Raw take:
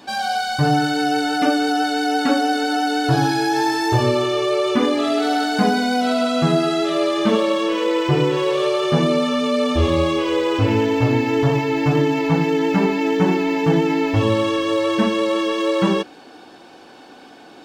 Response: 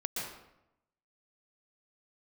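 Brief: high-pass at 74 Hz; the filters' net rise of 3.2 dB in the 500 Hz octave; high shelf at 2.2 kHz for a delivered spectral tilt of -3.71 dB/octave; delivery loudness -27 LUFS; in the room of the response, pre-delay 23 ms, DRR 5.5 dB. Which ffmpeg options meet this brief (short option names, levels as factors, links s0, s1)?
-filter_complex "[0:a]highpass=74,equalizer=f=500:t=o:g=3.5,highshelf=f=2200:g=7,asplit=2[s0][s1];[1:a]atrim=start_sample=2205,adelay=23[s2];[s1][s2]afir=irnorm=-1:irlink=0,volume=0.355[s3];[s0][s3]amix=inputs=2:normalize=0,volume=0.266"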